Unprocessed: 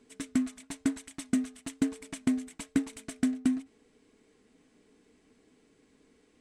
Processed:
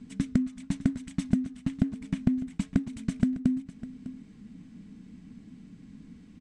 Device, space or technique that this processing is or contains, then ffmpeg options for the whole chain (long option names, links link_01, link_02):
jukebox: -filter_complex "[0:a]asettb=1/sr,asplit=3[link_01][link_02][link_03];[link_01]atrim=end=1.484[link_04];[link_02]atrim=start=1.48:end=2.57,asetpts=PTS-STARTPTS,afade=type=in:duration=0.004:curve=qsin,afade=type=out:start_time=1.086:duration=0.004:curve=qsin,acrossover=split=3300[link_05][link_06];[link_06]acompressor=threshold=-50dB:ratio=4:attack=1:release=60[link_07];[link_05][link_07]amix=inputs=2:normalize=0[link_08];[link_03]atrim=start=2.566[link_09];[link_04][link_08]acrossfade=duration=0.004:curve1=hsin:curve2=qsin[link_10];[link_10][link_09]acrossfade=duration=0.004:curve1=qsin:curve2=hsin,lowpass=7100,lowshelf=frequency=290:width_type=q:width=3:gain=13.5,acompressor=threshold=-27dB:ratio=6,aecho=1:1:603:0.168,volume=4dB"